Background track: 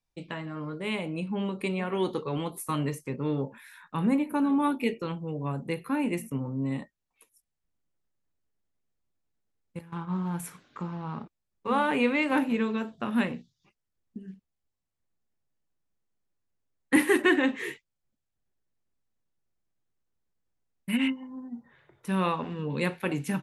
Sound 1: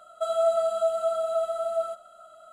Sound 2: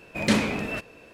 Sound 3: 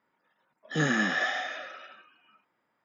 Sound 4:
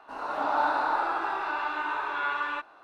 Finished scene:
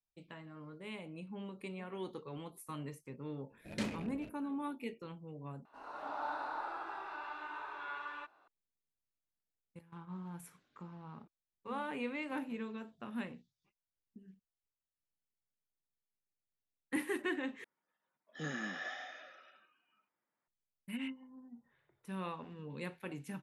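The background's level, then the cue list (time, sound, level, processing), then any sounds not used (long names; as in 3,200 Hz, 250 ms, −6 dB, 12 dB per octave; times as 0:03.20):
background track −14.5 dB
0:03.50: mix in 2 −15.5 dB + adaptive Wiener filter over 41 samples
0:05.65: overwrite with 4 −14 dB
0:17.64: overwrite with 3 −14.5 dB
not used: 1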